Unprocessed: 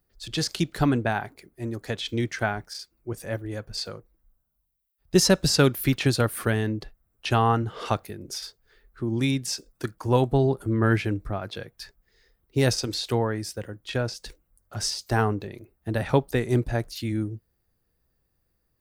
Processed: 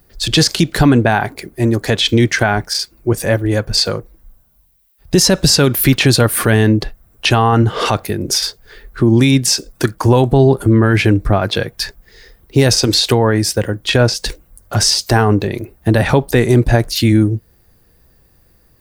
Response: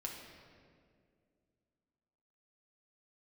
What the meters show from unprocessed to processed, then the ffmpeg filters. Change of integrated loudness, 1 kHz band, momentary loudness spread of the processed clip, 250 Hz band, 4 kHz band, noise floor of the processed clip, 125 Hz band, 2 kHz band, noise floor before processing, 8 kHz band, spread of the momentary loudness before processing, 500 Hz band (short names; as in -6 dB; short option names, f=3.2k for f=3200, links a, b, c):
+12.0 dB, +10.0 dB, 8 LU, +12.5 dB, +15.0 dB, -53 dBFS, +12.5 dB, +12.5 dB, -74 dBFS, +14.0 dB, 16 LU, +11.5 dB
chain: -filter_complex "[0:a]bandreject=f=1.3k:w=19,asplit=2[a][b];[b]acompressor=threshold=-37dB:ratio=6,volume=-0.5dB[c];[a][c]amix=inputs=2:normalize=0,alimiter=level_in=16dB:limit=-1dB:release=50:level=0:latency=1,volume=-1dB"